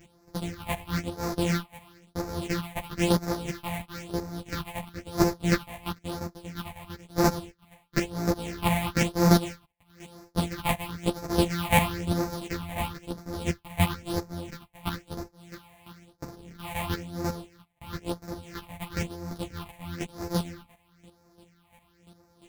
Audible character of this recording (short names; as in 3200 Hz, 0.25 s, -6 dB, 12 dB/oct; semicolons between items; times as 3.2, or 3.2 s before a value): a buzz of ramps at a fixed pitch in blocks of 256 samples; phasing stages 6, 1 Hz, lowest notch 360–3000 Hz; chopped level 2.9 Hz, depth 65%, duty 15%; a shimmering, thickened sound